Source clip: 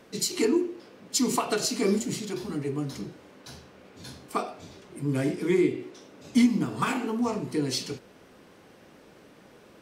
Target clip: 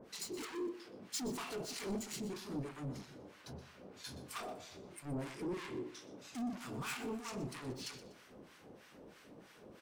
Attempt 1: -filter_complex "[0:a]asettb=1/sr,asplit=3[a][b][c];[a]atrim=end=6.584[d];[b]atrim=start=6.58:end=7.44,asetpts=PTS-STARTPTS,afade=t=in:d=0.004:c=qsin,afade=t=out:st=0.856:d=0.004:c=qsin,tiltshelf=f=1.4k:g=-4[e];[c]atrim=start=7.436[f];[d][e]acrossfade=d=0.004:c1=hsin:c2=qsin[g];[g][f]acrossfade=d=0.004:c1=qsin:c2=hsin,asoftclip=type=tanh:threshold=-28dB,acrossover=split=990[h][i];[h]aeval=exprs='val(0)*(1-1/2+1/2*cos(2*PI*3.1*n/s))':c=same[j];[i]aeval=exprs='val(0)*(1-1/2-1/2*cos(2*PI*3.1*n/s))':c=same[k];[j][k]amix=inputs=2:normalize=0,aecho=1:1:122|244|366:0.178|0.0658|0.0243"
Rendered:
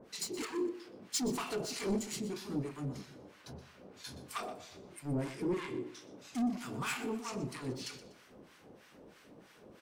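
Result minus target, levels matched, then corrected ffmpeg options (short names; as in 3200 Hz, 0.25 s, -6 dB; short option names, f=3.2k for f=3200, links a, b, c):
soft clip: distortion -4 dB
-filter_complex "[0:a]asettb=1/sr,asplit=3[a][b][c];[a]atrim=end=6.584[d];[b]atrim=start=6.58:end=7.44,asetpts=PTS-STARTPTS,afade=t=in:d=0.004:c=qsin,afade=t=out:st=0.856:d=0.004:c=qsin,tiltshelf=f=1.4k:g=-4[e];[c]atrim=start=7.436[f];[d][e]acrossfade=d=0.004:c1=hsin:c2=qsin[g];[g][f]acrossfade=d=0.004:c1=qsin:c2=hsin,asoftclip=type=tanh:threshold=-35.5dB,acrossover=split=990[h][i];[h]aeval=exprs='val(0)*(1-1/2+1/2*cos(2*PI*3.1*n/s))':c=same[j];[i]aeval=exprs='val(0)*(1-1/2-1/2*cos(2*PI*3.1*n/s))':c=same[k];[j][k]amix=inputs=2:normalize=0,aecho=1:1:122|244|366:0.178|0.0658|0.0243"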